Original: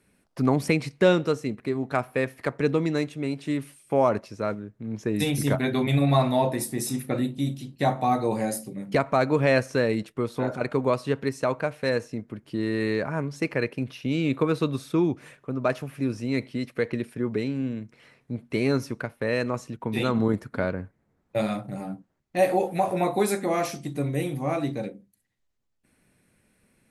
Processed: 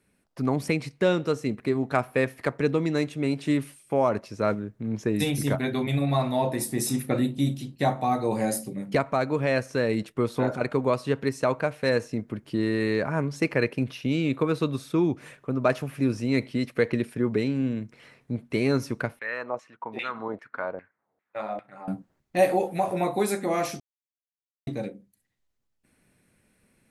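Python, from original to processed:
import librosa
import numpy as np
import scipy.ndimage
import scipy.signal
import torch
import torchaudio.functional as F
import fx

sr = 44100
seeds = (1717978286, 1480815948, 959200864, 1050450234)

y = fx.filter_lfo_bandpass(x, sr, shape='saw_down', hz=2.5, low_hz=580.0, high_hz=2400.0, q=2.4, at=(19.19, 21.88))
y = fx.edit(y, sr, fx.silence(start_s=23.8, length_s=0.87), tone=tone)
y = fx.rider(y, sr, range_db=4, speed_s=0.5)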